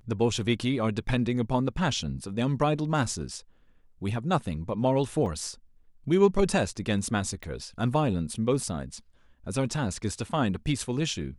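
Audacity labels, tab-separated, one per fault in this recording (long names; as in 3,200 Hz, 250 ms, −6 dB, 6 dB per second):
5.260000	5.260000	drop-out 2.3 ms
7.430000	7.430000	click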